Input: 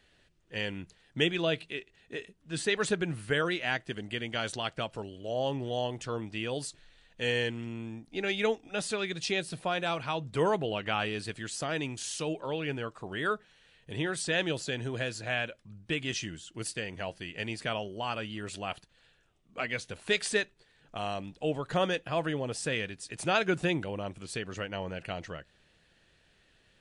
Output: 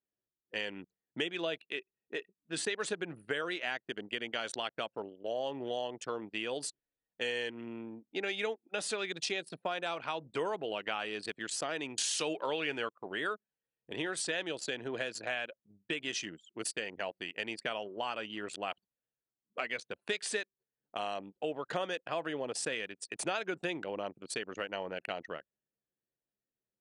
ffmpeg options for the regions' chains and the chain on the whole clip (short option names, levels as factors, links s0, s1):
-filter_complex "[0:a]asettb=1/sr,asplit=3[s0][s1][s2];[s0]atrim=end=11.984[s3];[s1]atrim=start=11.98:end=12.89,asetpts=PTS-STARTPTS,afade=t=in:d=0.004:c=qsin,afade=t=out:st=0.906:d=0.004:c=qsin,equalizer=f=2900:w=0.4:g=4.5,acontrast=86[s4];[s2]atrim=start=12.886[s5];[s3][s4]acrossfade=d=0.004:c1=hsin:c2=qsin[s6];[s6][s5]acrossfade=d=0.004:c1=qsin:c2=hsin,anlmdn=0.398,highpass=310,acompressor=threshold=0.0178:ratio=4,volume=1.33"